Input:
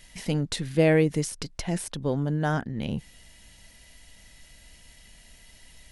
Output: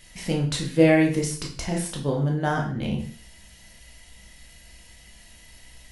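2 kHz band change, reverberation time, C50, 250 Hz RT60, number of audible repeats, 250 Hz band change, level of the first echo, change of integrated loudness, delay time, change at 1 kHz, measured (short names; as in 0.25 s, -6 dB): +3.5 dB, 0.45 s, 8.0 dB, 0.40 s, none, +4.0 dB, none, +3.0 dB, none, +4.0 dB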